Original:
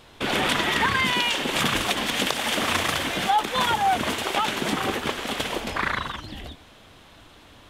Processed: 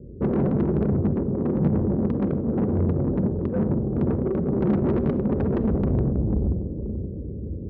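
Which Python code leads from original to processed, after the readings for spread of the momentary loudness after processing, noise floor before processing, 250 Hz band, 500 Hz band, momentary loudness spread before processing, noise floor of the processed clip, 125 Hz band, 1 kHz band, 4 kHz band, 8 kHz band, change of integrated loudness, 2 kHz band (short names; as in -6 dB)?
6 LU, -51 dBFS, +9.5 dB, +4.5 dB, 7 LU, -33 dBFS, +13.5 dB, -15.5 dB, under -35 dB, under -40 dB, -0.5 dB, -24.0 dB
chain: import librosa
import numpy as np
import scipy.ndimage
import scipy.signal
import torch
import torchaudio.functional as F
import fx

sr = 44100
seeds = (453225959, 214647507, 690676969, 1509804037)

p1 = fx.halfwave_hold(x, sr)
p2 = fx.rider(p1, sr, range_db=4, speed_s=2.0)
p3 = scipy.signal.sosfilt(scipy.signal.butter(12, 520.0, 'lowpass', fs=sr, output='sos'), p2)
p4 = p3 + fx.echo_diffused(p3, sr, ms=472, feedback_pct=59, wet_db=-12.5, dry=0)
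p5 = 10.0 ** (-25.0 / 20.0) * np.tanh(p4 / 10.0 ** (-25.0 / 20.0))
p6 = scipy.signal.sosfilt(scipy.signal.butter(4, 52.0, 'highpass', fs=sr, output='sos'), p5)
p7 = fx.low_shelf(p6, sr, hz=220.0, db=11.5)
p8 = fx.room_shoebox(p7, sr, seeds[0], volume_m3=3200.0, walls='furnished', distance_m=1.1)
p9 = fx.doppler_dist(p8, sr, depth_ms=0.55)
y = p9 * librosa.db_to_amplitude(1.5)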